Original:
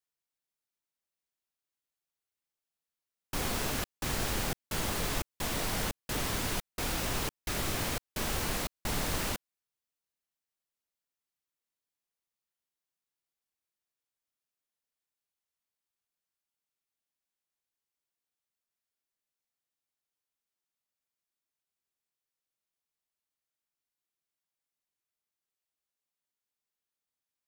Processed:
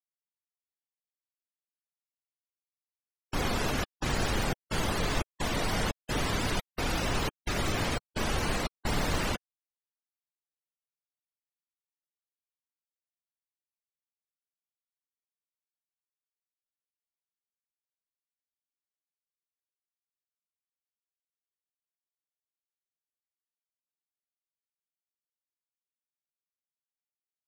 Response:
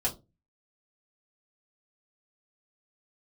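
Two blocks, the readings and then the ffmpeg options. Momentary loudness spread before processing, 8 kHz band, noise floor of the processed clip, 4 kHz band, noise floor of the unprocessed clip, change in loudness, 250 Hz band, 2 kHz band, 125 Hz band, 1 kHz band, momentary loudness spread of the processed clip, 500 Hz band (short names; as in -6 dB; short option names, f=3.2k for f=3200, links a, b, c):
3 LU, -2.5 dB, under -85 dBFS, +2.0 dB, under -85 dBFS, +2.0 dB, +4.5 dB, +3.5 dB, +4.5 dB, +4.0 dB, 3 LU, +4.5 dB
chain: -af "afftfilt=real='re*gte(hypot(re,im),0.0158)':imag='im*gte(hypot(re,im),0.0158)':win_size=1024:overlap=0.75,volume=4.5dB"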